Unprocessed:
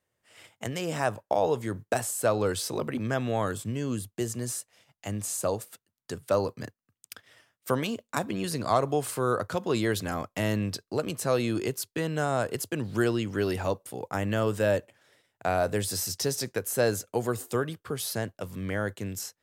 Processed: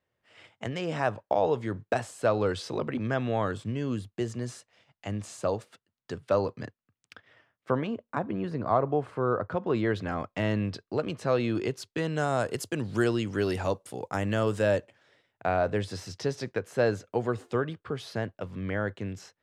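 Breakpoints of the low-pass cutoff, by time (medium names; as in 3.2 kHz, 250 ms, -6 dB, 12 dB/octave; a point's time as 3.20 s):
6.65 s 3.9 kHz
8.08 s 1.5 kHz
9.42 s 1.5 kHz
10.30 s 3.4 kHz
11.50 s 3.4 kHz
12.38 s 8.6 kHz
14.50 s 8.6 kHz
15.47 s 3.1 kHz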